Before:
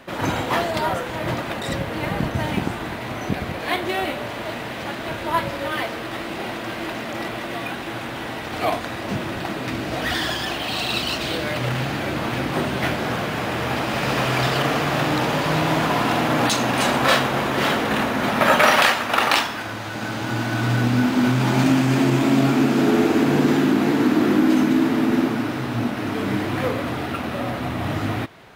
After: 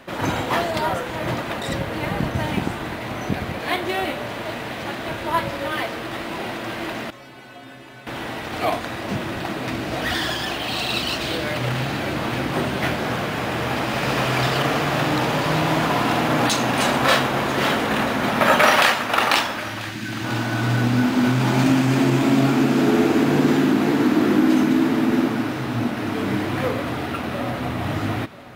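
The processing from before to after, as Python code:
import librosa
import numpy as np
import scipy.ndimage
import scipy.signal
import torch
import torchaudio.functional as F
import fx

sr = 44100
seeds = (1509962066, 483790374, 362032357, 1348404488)

y = fx.stiff_resonator(x, sr, f0_hz=130.0, decay_s=0.64, stiffness=0.008, at=(7.1, 8.07))
y = fx.spec_erase(y, sr, start_s=19.59, length_s=0.65, low_hz=400.0, high_hz=1500.0)
y = y + 10.0 ** (-17.0 / 20.0) * np.pad(y, (int(990 * sr / 1000.0), 0))[:len(y)]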